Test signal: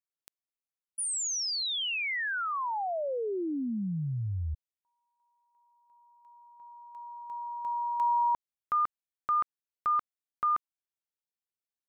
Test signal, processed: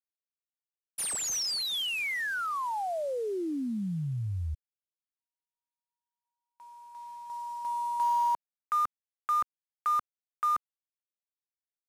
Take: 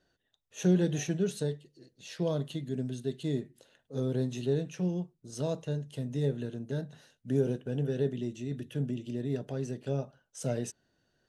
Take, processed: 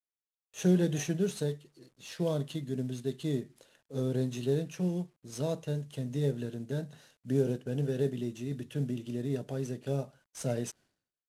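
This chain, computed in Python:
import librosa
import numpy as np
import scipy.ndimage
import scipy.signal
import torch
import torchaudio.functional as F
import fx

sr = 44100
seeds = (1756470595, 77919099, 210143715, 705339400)

y = fx.cvsd(x, sr, bps=64000)
y = fx.gate_hold(y, sr, open_db=-51.0, close_db=-61.0, hold_ms=96.0, range_db=-35, attack_ms=0.17, release_ms=387.0)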